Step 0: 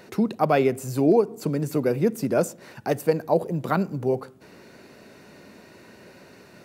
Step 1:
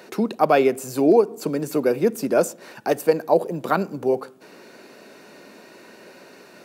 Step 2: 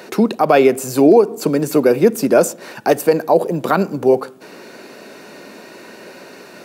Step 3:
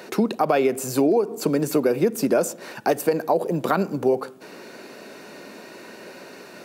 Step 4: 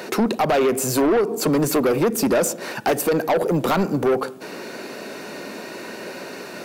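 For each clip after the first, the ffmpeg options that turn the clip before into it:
ffmpeg -i in.wav -af "highpass=260,bandreject=frequency=2000:width=18,volume=4dB" out.wav
ffmpeg -i in.wav -af "alimiter=level_in=9dB:limit=-1dB:release=50:level=0:latency=1,volume=-1dB" out.wav
ffmpeg -i in.wav -af "acompressor=threshold=-12dB:ratio=6,volume=-3.5dB" out.wav
ffmpeg -i in.wav -af "asoftclip=type=tanh:threshold=-22dB,volume=7.5dB" out.wav

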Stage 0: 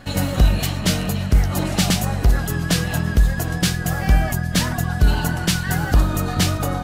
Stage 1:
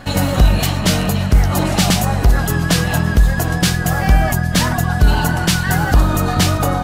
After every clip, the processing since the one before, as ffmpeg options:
ffmpeg -i in.wav -filter_complex "[0:a]equalizer=frequency=910:width_type=o:width=1.1:gain=3.5,asplit=2[link_01][link_02];[link_02]alimiter=limit=-12.5dB:level=0:latency=1,volume=-1dB[link_03];[link_01][link_03]amix=inputs=2:normalize=0" out.wav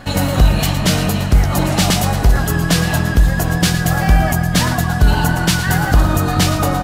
ffmpeg -i in.wav -af "aecho=1:1:113|226|339|452|565|678|791:0.266|0.157|0.0926|0.0546|0.0322|0.019|0.0112" out.wav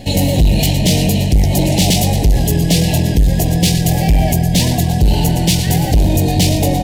ffmpeg -i in.wav -af "asoftclip=type=tanh:threshold=-11.5dB,asuperstop=centerf=1300:order=4:qfactor=0.8,volume=5.5dB" out.wav

